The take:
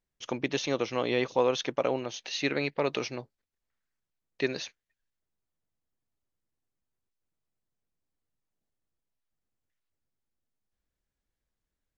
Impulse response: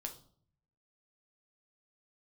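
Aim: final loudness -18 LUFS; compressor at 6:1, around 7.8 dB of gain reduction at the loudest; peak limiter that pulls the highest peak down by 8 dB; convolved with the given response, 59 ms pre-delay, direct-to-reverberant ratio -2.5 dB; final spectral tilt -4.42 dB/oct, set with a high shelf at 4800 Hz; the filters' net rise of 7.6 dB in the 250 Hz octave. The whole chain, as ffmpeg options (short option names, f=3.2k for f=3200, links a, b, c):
-filter_complex "[0:a]equalizer=f=250:t=o:g=9,highshelf=f=4.8k:g=-8.5,acompressor=threshold=-27dB:ratio=6,alimiter=limit=-24dB:level=0:latency=1,asplit=2[a][b];[1:a]atrim=start_sample=2205,adelay=59[c];[b][c]afir=irnorm=-1:irlink=0,volume=5dB[d];[a][d]amix=inputs=2:normalize=0,volume=13.5dB"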